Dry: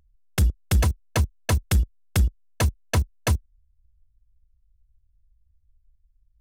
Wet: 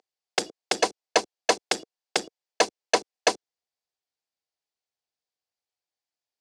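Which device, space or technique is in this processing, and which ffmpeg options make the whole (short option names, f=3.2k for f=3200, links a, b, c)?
phone speaker on a table: -af "highpass=f=340:w=0.5412,highpass=f=340:w=1.3066,equalizer=f=460:t=q:w=4:g=4,equalizer=f=750:t=q:w=4:g=7,equalizer=f=1.3k:t=q:w=4:g=-4,equalizer=f=4.7k:t=q:w=4:g=6,lowpass=f=7.8k:w=0.5412,lowpass=f=7.8k:w=1.3066,volume=4.5dB"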